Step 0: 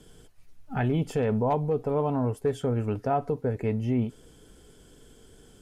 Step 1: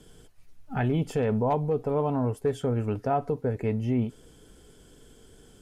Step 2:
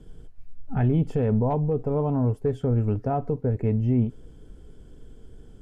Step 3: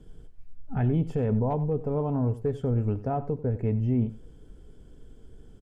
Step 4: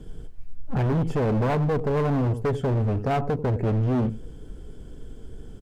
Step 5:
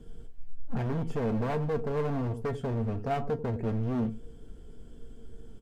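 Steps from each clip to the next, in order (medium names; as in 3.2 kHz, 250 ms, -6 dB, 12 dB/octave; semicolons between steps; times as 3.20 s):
no audible change
tilt EQ -3 dB/octave; trim -3 dB
delay 91 ms -16 dB; trim -3 dB
hard clipper -29.5 dBFS, distortion -6 dB; trim +9 dB
feedback comb 230 Hz, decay 0.16 s, harmonics all, mix 70%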